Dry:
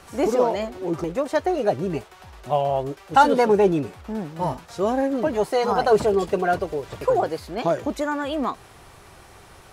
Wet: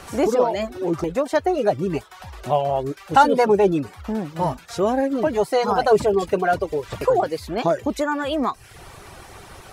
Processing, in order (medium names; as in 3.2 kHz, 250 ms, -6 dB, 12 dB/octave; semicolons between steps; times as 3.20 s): reverb removal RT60 0.56 s; in parallel at +2 dB: compression, threshold -32 dBFS, peak gain reduction 21 dB